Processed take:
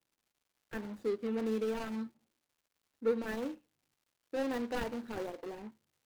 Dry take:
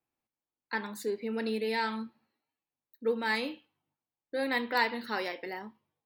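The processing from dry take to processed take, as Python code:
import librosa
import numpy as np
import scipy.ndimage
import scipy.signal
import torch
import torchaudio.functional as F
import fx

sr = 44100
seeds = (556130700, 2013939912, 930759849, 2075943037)

y = scipy.signal.medfilt(x, 41)
y = fx.dmg_crackle(y, sr, seeds[0], per_s=310.0, level_db=-64.0)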